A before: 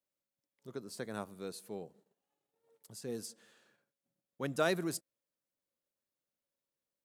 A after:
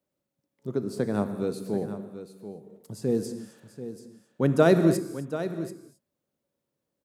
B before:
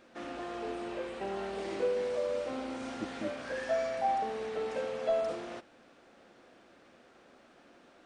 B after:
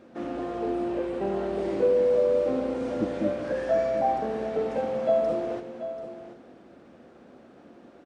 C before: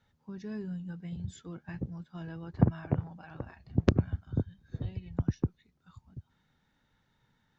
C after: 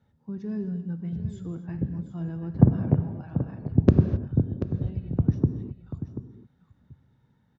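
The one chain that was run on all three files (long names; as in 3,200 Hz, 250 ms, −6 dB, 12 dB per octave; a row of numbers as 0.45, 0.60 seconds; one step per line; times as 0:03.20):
high-pass filter 63 Hz
tilt shelving filter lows +8 dB, about 840 Hz
on a send: single-tap delay 736 ms −12 dB
on the sum: reverb whose tail is shaped and stops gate 290 ms flat, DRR 9 dB
loudness normalisation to −27 LKFS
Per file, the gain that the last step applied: +9.5, +4.5, +0.5 decibels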